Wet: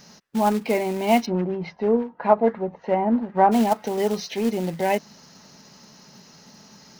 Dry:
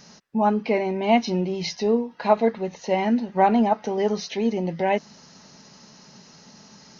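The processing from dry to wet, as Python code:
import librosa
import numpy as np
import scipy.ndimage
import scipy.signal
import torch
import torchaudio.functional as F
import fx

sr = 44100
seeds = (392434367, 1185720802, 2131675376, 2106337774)

y = fx.quant_float(x, sr, bits=2)
y = fx.filter_lfo_lowpass(y, sr, shape='sine', hz=fx.line((1.25, 8.8), (3.51, 1.6)), low_hz=840.0, high_hz=1700.0, q=1.2, at=(1.25, 3.51), fade=0.02)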